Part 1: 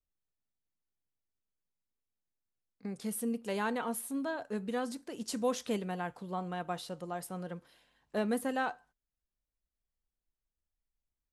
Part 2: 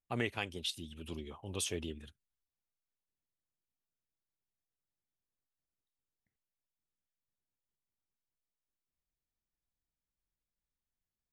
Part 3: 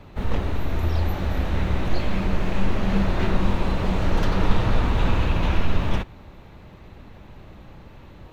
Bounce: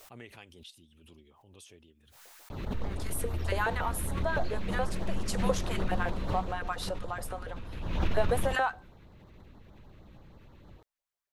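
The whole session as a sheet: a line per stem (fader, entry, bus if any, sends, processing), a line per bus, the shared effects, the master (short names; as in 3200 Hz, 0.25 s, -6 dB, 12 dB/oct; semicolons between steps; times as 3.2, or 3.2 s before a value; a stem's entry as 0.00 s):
+1.0 dB, 0.00 s, no send, LFO high-pass saw up 7.1 Hz 450–1800 Hz
-14.0 dB, 0.00 s, no send, auto duck -13 dB, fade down 1.55 s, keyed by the first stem
6.36 s -11.5 dB -> 6.65 s -22.5 dB -> 7.72 s -22.5 dB -> 8 s -10 dB, 2.50 s, no send, LFO notch sine 6.4 Hz 680–2700 Hz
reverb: off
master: backwards sustainer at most 46 dB/s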